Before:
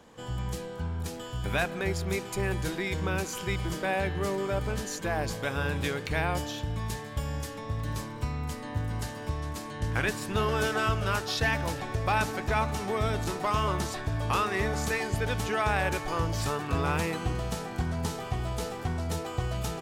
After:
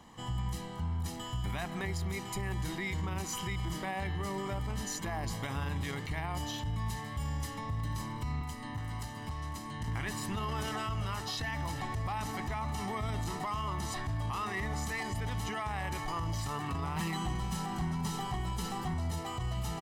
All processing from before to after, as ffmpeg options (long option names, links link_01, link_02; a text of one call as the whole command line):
ffmpeg -i in.wav -filter_complex "[0:a]asettb=1/sr,asplit=3[link_01][link_02][link_03];[link_01]atrim=end=8.414[link_04];[link_02]atrim=start=8.41:end=9.88,asetpts=PTS-STARTPTS,afade=type=in:duration=0.004:curve=qsin,afade=type=out:start_time=1.466:duration=0.004:curve=qsin,asoftclip=type=hard:threshold=-27dB,acrossover=split=320|990[link_05][link_06][link_07];[link_05]acompressor=threshold=-40dB:ratio=4[link_08];[link_06]acompressor=threshold=-48dB:ratio=4[link_09];[link_07]acompressor=threshold=-46dB:ratio=4[link_10];[link_08][link_09][link_10]amix=inputs=3:normalize=0[link_11];[link_03]atrim=start=9.876[link_12];[link_04][link_11]acrossfade=duration=0.004:curve1=hsin:curve2=qsin[link_13];[link_13][link_12]acrossfade=duration=0.004:curve1=qsin:curve2=hsin,asettb=1/sr,asplit=3[link_14][link_15][link_16];[link_14]atrim=end=16.964[link_17];[link_15]atrim=start=16.96:end=18.94,asetpts=PTS-STARTPTS,afade=type=in:duration=0.004:curve=qsin,afade=type=out:start_time=1.976:duration=0.004:curve=qsin,aecho=1:1:5.3:1,atrim=end_sample=87318,asoftclip=type=hard:threshold=-24dB[link_18];[link_16]atrim=start=18.936[link_19];[link_17][link_18]acrossfade=duration=0.004:curve1=hsin:curve2=qsin[link_20];[link_20][link_19]acrossfade=duration=0.004:curve1=qsin:curve2=hsin,aecho=1:1:1:0.63,acompressor=threshold=-32dB:ratio=1.5,alimiter=level_in=2dB:limit=-24dB:level=0:latency=1:release=18,volume=-2dB,volume=-1.5dB" out.wav